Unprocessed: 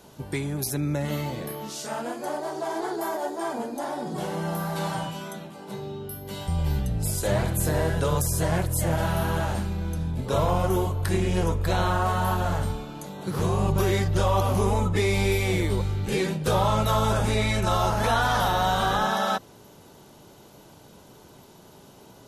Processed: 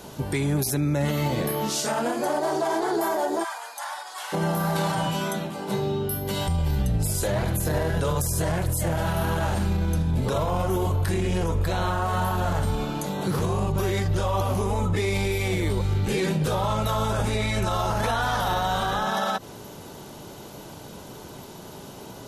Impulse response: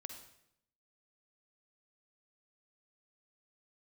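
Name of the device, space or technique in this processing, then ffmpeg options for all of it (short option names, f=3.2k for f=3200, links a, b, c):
stacked limiters: -filter_complex "[0:a]asettb=1/sr,asplit=3[a][b][c];[a]atrim=end=7.244[d];[b]atrim=start=7.24:end=8.01,asetpts=PTS-STARTPTS,afade=t=in:d=0.004:c=qsin,afade=t=out:st=0.766:d=0.004:c=qsin,equalizer=f=8.2k:t=o:w=0.25:g=-6.5[e];[c]atrim=start=8.006[f];[d][e]acrossfade=d=0.004:c1=hsin:c2=qsin[g];[g][f]acrossfade=d=0.004:c1=qsin:c2=hsin,alimiter=limit=-19dB:level=0:latency=1:release=97,alimiter=level_in=1.5dB:limit=-24dB:level=0:latency=1:release=73,volume=-1.5dB,asplit=3[h][i][j];[h]afade=t=out:st=3.43:d=0.02[k];[i]highpass=f=1k:w=0.5412,highpass=f=1k:w=1.3066,afade=t=in:st=3.43:d=0.02,afade=t=out:st=4.32:d=0.02[l];[j]afade=t=in:st=4.32:d=0.02[m];[k][l][m]amix=inputs=3:normalize=0,volume=9dB"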